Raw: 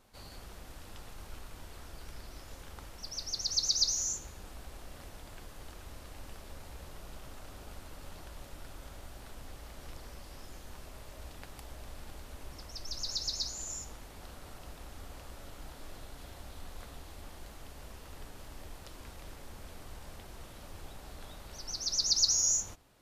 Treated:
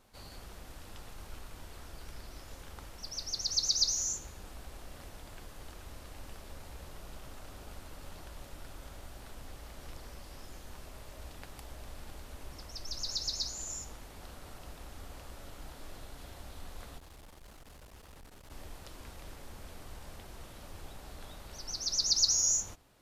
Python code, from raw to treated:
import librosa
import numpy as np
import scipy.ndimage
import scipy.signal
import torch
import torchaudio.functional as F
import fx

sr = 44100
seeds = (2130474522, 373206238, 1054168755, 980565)

y = fx.tube_stage(x, sr, drive_db=48.0, bias=0.4, at=(16.98, 18.51))